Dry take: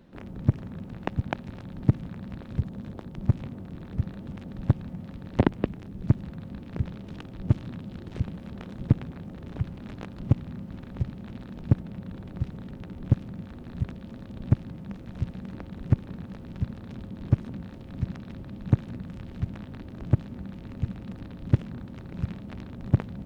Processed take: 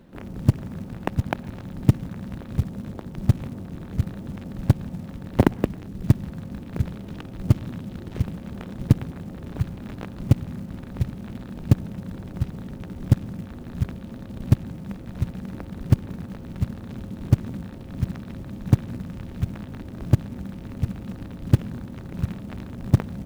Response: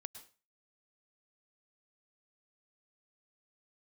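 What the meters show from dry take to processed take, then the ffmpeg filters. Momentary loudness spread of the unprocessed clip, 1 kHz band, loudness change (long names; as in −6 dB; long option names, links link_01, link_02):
13 LU, +4.0 dB, +4.0 dB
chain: -filter_complex "[0:a]acrusher=bits=6:mode=log:mix=0:aa=0.000001,asplit=2[link_01][link_02];[1:a]atrim=start_sample=2205,lowpass=2800[link_03];[link_02][link_03]afir=irnorm=-1:irlink=0,volume=-9dB[link_04];[link_01][link_04]amix=inputs=2:normalize=0,volume=2.5dB"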